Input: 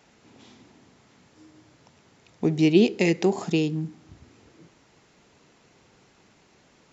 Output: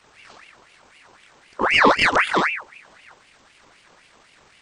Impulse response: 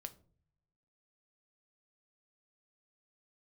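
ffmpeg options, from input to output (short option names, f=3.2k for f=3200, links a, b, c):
-filter_complex "[0:a]afftfilt=real='re':imag='-im':win_size=4096:overlap=0.75,atempo=1.5,asplit=2[a][b];[b]asoftclip=type=tanh:threshold=-21dB,volume=-4dB[c];[a][c]amix=inputs=2:normalize=0,aeval=exprs='val(0)*sin(2*PI*1600*n/s+1600*0.6/3.9*sin(2*PI*3.9*n/s))':c=same,volume=8.5dB"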